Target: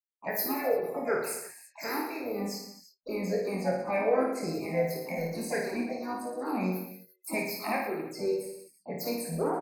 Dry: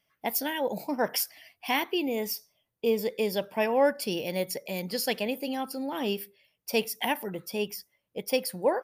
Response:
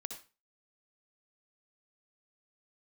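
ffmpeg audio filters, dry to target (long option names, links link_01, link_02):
-filter_complex "[0:a]afftfilt=real='re*pow(10,17/40*sin(2*PI*(0.58*log(max(b,1)*sr/1024/100)/log(2)-(-2.9)*(pts-256)/sr)))':imag='im*pow(10,17/40*sin(2*PI*(0.58*log(max(b,1)*sr/1024/100)/log(2)-(-2.9)*(pts-256)/sr)))':win_size=1024:overlap=0.75,agate=range=-24dB:threshold=-52dB:ratio=16:detection=peak,afftfilt=real='re*gte(hypot(re,im),0.00891)':imag='im*gte(hypot(re,im),0.00891)':win_size=1024:overlap=0.75,lowshelf=frequency=63:gain=11,asplit=2[link_01][link_02];[link_02]acompressor=threshold=-36dB:ratio=10,volume=-1dB[link_03];[link_01][link_03]amix=inputs=2:normalize=0,asplit=3[link_04][link_05][link_06];[link_05]asetrate=55563,aresample=44100,atempo=0.793701,volume=-9dB[link_07];[link_06]asetrate=66075,aresample=44100,atempo=0.66742,volume=-10dB[link_08];[link_04][link_07][link_08]amix=inputs=3:normalize=0,acrossover=split=390|3000[link_09][link_10][link_11];[link_09]acompressor=threshold=-23dB:ratio=5[link_12];[link_12][link_10][link_11]amix=inputs=3:normalize=0,flanger=delay=19.5:depth=4.4:speed=0.31,asuperstop=centerf=3500:order=8:qfactor=2,aecho=1:1:50|105|165.5|232|305.3:0.631|0.398|0.251|0.158|0.1,asetrate=40517,aresample=44100,adynamicequalizer=threshold=0.00708:dfrequency=3300:dqfactor=0.7:tfrequency=3300:tqfactor=0.7:attack=5:release=100:ratio=0.375:range=2.5:mode=cutabove:tftype=highshelf,volume=-6dB"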